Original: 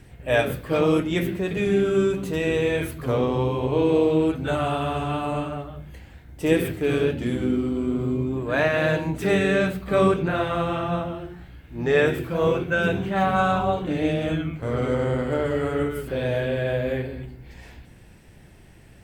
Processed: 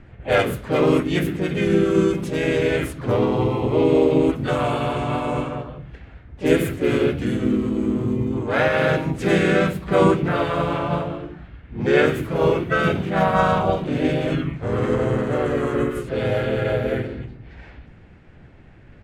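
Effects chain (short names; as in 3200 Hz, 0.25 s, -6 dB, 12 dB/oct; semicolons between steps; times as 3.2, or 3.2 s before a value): harmoniser -3 st -1 dB, +4 st -10 dB; low-pass opened by the level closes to 2300 Hz, open at -18 dBFS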